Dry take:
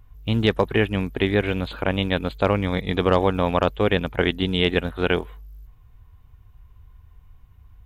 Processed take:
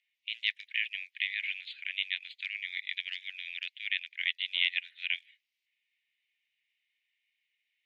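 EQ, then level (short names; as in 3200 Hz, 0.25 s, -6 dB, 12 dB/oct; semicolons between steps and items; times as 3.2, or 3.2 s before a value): steep high-pass 2000 Hz 72 dB/oct; LPF 2700 Hz 12 dB/oct; +1.0 dB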